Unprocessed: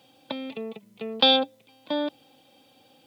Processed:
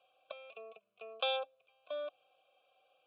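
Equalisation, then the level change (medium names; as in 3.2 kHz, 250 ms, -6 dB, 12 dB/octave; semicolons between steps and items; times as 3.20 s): vowel filter a; peaking EQ 1.8 kHz +9 dB 0.75 oct; static phaser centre 1.3 kHz, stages 8; 0.0 dB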